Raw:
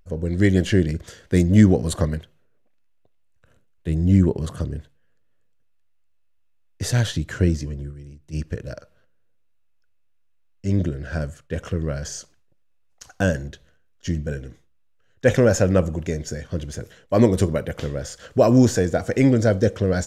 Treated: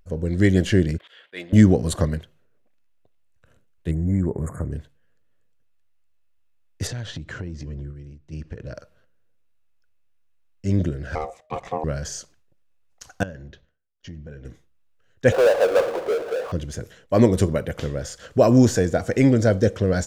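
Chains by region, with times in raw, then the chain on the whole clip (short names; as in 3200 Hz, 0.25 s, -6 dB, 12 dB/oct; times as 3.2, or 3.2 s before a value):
0.98–1.53 HPF 730 Hz + resonant high shelf 4400 Hz -12 dB, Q 3 + auto swell 0.125 s
3.91–4.72 compressor 2:1, threshold -21 dBFS + brick-wall FIR band-stop 2300–6600 Hz
6.87–8.75 air absorption 100 m + compressor 5:1, threshold -29 dBFS
11.15–11.84 high shelf 8800 Hz -11.5 dB + ring modulator 620 Hz
13.23–14.45 expander -49 dBFS + compressor 2.5:1, threshold -40 dBFS + running mean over 5 samples
15.32–16.52 Chebyshev band-pass 440–1200 Hz, order 3 + power-law curve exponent 0.5
whole clip: dry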